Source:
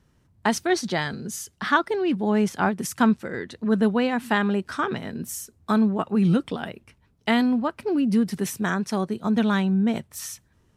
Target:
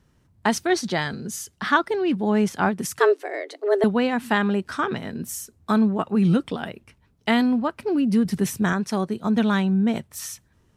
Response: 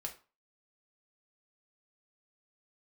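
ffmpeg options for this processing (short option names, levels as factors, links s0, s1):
-filter_complex "[0:a]asettb=1/sr,asplit=3[s0][s1][s2];[s0]atrim=end=2.994[s3];[s1]atrim=start=2.99:end=3.84,asetpts=PTS-STARTPTS,afade=t=in:d=0.004:c=qsin,afade=t=out:st=0.846:d=0.004:c=qsin,afreqshift=200[s4];[s2]atrim=start=3.836[s5];[s3][s4]acrossfade=d=0.004:c1=hsin:c2=qsin[s6];[s6][s5]acrossfade=d=0.004:c1=qsin:c2=hsin,asettb=1/sr,asplit=3[s7][s8][s9];[s7]atrim=end=8.254[s10];[s8]atrim=start=8.25:end=8.73,asetpts=PTS-STARTPTS,afade=t=in:d=0.004:c=qsin,afade=t=out:st=0.476:d=0.004:c=qsin,lowshelf=f=170:g=9[s11];[s9]atrim=start=8.726[s12];[s10][s11]acrossfade=d=0.004:c1=hsin:c2=qsin[s13];[s13][s12]acrossfade=d=0.004:c1=qsin:c2=hsin,volume=1.12"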